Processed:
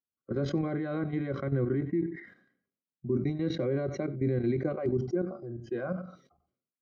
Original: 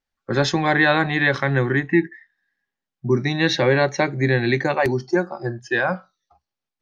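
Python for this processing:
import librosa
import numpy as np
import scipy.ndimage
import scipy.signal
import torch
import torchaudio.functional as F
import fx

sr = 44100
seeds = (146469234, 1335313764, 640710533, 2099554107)

p1 = scipy.signal.sosfilt(scipy.signal.butter(2, 92.0, 'highpass', fs=sr, output='sos'), x)
p2 = fx.low_shelf(p1, sr, hz=160.0, db=-7.0)
p3 = fx.level_steps(p2, sr, step_db=12)
p4 = scipy.signal.lfilter(np.full(50, 1.0 / 50), 1.0, p3)
p5 = p4 + fx.echo_single(p4, sr, ms=93, db=-21.5, dry=0)
y = fx.sustainer(p5, sr, db_per_s=92.0)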